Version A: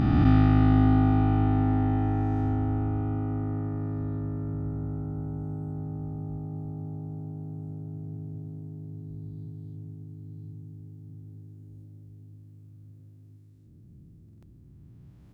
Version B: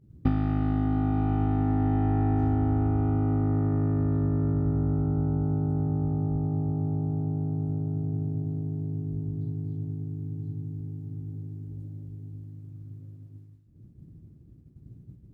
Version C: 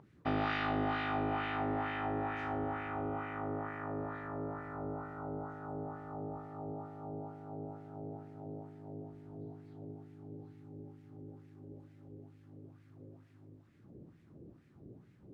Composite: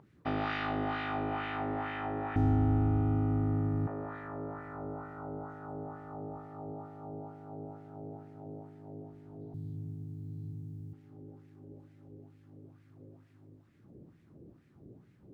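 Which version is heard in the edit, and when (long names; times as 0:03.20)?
C
0:02.36–0:03.87: punch in from A
0:09.54–0:10.93: punch in from A
not used: B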